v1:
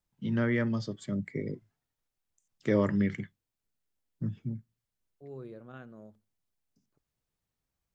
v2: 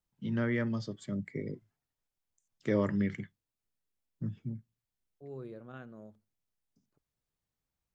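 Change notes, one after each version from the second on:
first voice −3.0 dB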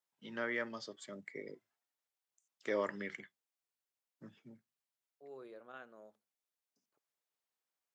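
master: add high-pass filter 540 Hz 12 dB per octave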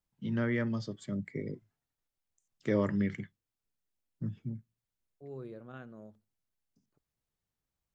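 master: remove high-pass filter 540 Hz 12 dB per octave

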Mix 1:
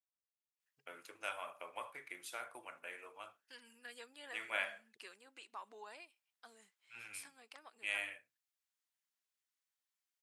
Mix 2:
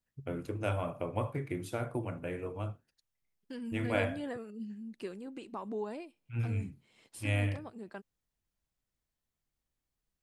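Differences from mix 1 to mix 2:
first voice: entry −0.60 s
master: remove high-pass filter 1,300 Hz 12 dB per octave

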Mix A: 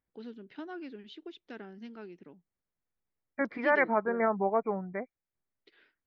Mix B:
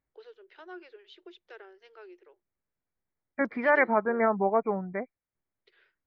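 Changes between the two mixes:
first voice: add Chebyshev high-pass with heavy ripple 350 Hz, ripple 3 dB
second voice +3.0 dB

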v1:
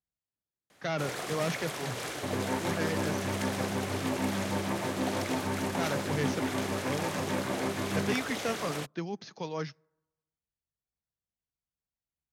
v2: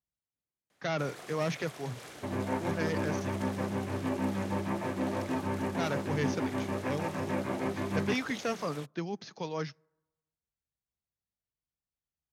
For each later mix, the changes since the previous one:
first sound −10.5 dB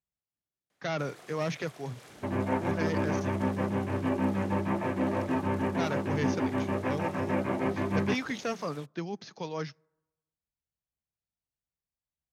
first sound −5.0 dB
second sound +3.5 dB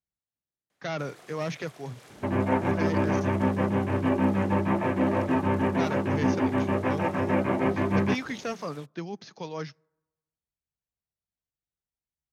second sound +4.5 dB

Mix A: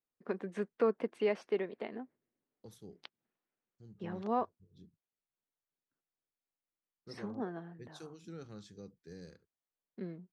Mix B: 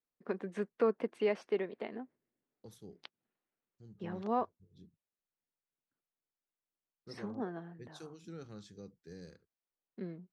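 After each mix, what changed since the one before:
nothing changed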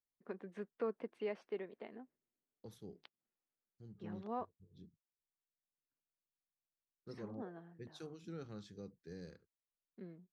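first voice −9.0 dB
master: add parametric band 8,400 Hz −6.5 dB 1.2 octaves

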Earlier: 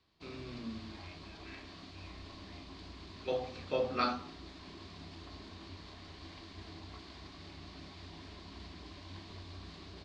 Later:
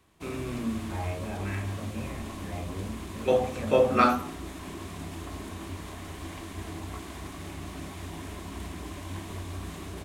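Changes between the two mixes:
second voice: remove resonant band-pass 3,000 Hz, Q 0.89
master: remove transistor ladder low-pass 4,900 Hz, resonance 70%

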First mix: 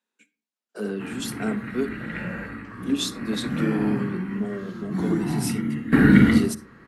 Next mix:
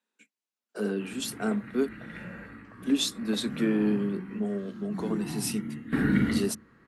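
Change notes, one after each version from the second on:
speech: send off
background −10.0 dB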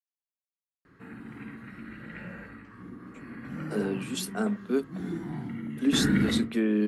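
speech: entry +2.95 s

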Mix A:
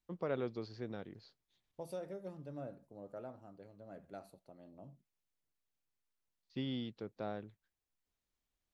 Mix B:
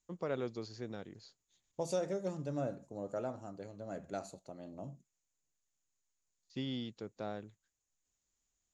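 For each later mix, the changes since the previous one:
second voice +8.5 dB
master: add low-pass with resonance 6,900 Hz, resonance Q 9.7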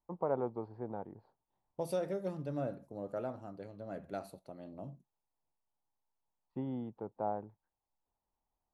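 first voice: add low-pass with resonance 880 Hz, resonance Q 5.1
master: remove low-pass with resonance 6,900 Hz, resonance Q 9.7

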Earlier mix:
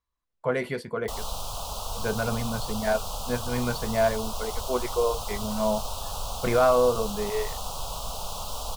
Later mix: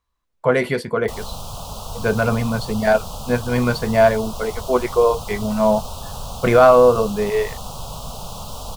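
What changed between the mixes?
speech +9.5 dB
background: add parametric band 160 Hz +11 dB 2.2 octaves

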